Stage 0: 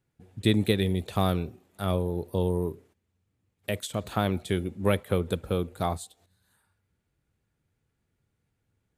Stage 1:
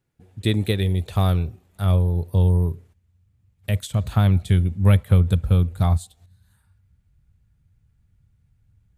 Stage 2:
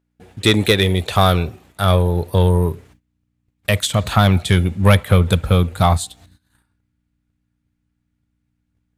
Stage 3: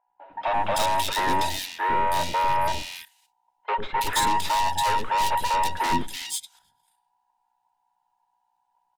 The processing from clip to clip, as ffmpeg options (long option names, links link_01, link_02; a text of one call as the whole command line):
ffmpeg -i in.wav -af "asubboost=boost=11.5:cutoff=110,volume=1.5dB" out.wav
ffmpeg -i in.wav -filter_complex "[0:a]aeval=exprs='val(0)+0.00178*(sin(2*PI*60*n/s)+sin(2*PI*2*60*n/s)/2+sin(2*PI*3*60*n/s)/3+sin(2*PI*4*60*n/s)/4+sin(2*PI*5*60*n/s)/5)':channel_layout=same,asplit=2[link_01][link_02];[link_02]highpass=frequency=720:poles=1,volume=17dB,asoftclip=type=tanh:threshold=-5dB[link_03];[link_01][link_03]amix=inputs=2:normalize=0,lowpass=frequency=6100:poles=1,volume=-6dB,agate=range=-18dB:threshold=-52dB:ratio=16:detection=peak,volume=5dB" out.wav
ffmpeg -i in.wav -filter_complex "[0:a]afftfilt=real='real(if(between(b,1,1008),(2*floor((b-1)/48)+1)*48-b,b),0)':imag='imag(if(between(b,1,1008),(2*floor((b-1)/48)+1)*48-b,b),0)*if(between(b,1,1008),-1,1)':win_size=2048:overlap=0.75,aeval=exprs='(tanh(12.6*val(0)+0.65)-tanh(0.65))/12.6':channel_layout=same,acrossover=split=410|2500[link_01][link_02][link_03];[link_01]adelay=100[link_04];[link_03]adelay=330[link_05];[link_04][link_02][link_05]amix=inputs=3:normalize=0,volume=2dB" out.wav